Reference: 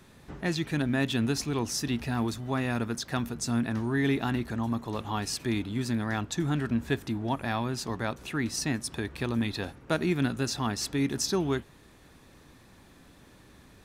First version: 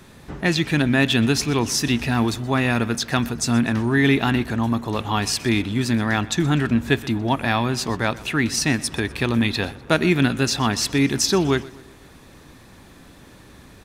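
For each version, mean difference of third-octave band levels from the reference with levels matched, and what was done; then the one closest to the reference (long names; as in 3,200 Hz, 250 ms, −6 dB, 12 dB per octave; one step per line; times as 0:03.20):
1.5 dB: on a send: repeating echo 124 ms, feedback 48%, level −20 dB
on the sum: dynamic equaliser 2,600 Hz, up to +5 dB, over −46 dBFS, Q 1.1
level +8.5 dB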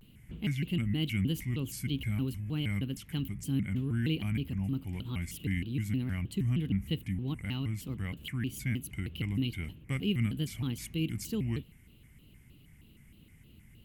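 8.5 dB: drawn EQ curve 170 Hz 0 dB, 670 Hz −22 dB, 1,700 Hz −19 dB, 2,500 Hz +2 dB, 4,700 Hz −23 dB, 14,000 Hz +3 dB
pitch modulation by a square or saw wave square 3.2 Hz, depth 250 cents
level +1 dB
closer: first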